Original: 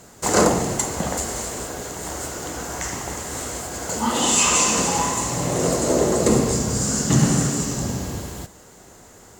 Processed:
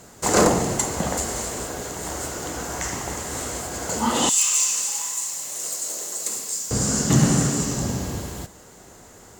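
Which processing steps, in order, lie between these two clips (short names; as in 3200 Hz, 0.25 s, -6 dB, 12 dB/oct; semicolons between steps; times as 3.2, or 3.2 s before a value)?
one-sided fold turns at -9.5 dBFS; 4.29–6.71 differentiator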